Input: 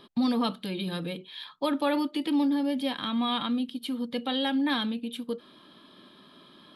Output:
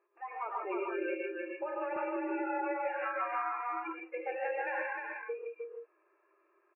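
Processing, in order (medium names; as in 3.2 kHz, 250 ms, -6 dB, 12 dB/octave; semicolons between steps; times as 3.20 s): in parallel at -10 dB: integer overflow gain 25 dB; on the sum: spectral noise reduction 24 dB; FFT band-pass 320–2800 Hz; compression 10:1, threshold -38 dBFS, peak gain reduction 15 dB; on a send: delay 308 ms -4 dB; on the sum: gated-style reverb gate 180 ms rising, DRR -2 dB; 1.96–4.00 s: three bands compressed up and down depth 70%; trim +2 dB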